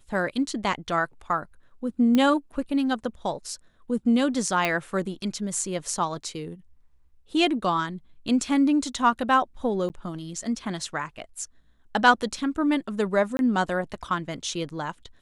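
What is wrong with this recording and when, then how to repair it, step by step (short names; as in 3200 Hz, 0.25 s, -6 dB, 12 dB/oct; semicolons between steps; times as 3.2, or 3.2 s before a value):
2.15 pop -11 dBFS
4.65 pop -10 dBFS
9.89–9.9 gap 9.8 ms
13.37–13.39 gap 21 ms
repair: de-click; interpolate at 9.89, 9.8 ms; interpolate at 13.37, 21 ms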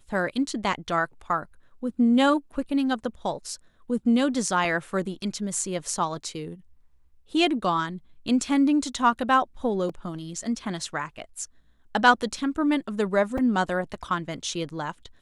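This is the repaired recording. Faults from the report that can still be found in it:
4.65 pop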